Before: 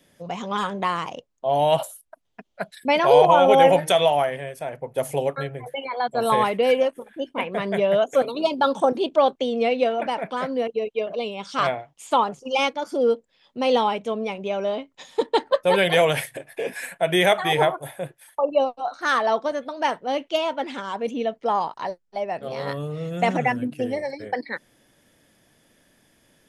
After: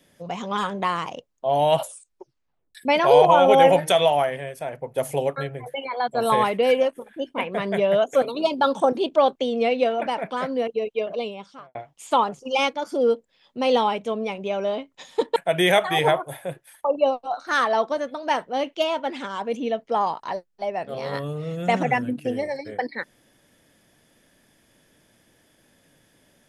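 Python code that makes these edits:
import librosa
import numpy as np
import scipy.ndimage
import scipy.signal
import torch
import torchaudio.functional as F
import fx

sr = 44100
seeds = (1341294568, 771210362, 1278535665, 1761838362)

y = fx.studio_fade_out(x, sr, start_s=11.14, length_s=0.61)
y = fx.edit(y, sr, fx.tape_stop(start_s=1.83, length_s=0.92),
    fx.cut(start_s=15.36, length_s=1.54), tone=tone)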